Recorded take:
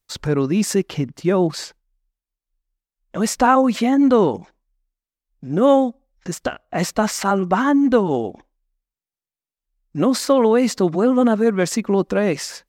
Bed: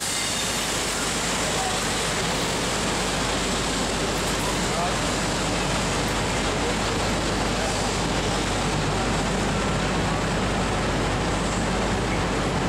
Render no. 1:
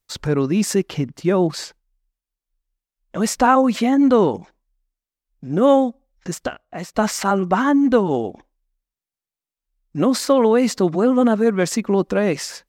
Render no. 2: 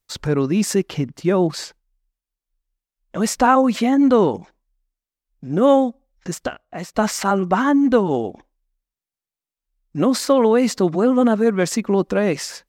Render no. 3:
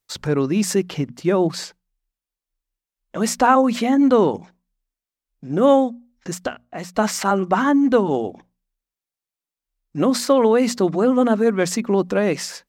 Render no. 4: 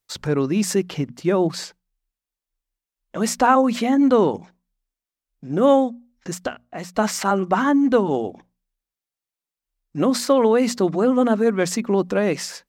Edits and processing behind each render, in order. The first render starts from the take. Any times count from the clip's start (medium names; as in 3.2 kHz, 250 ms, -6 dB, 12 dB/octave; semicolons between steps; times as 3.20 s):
6.34–6.94 s: fade out, to -16.5 dB
no audible change
bass shelf 65 Hz -9 dB; hum notches 60/120/180/240 Hz
trim -1 dB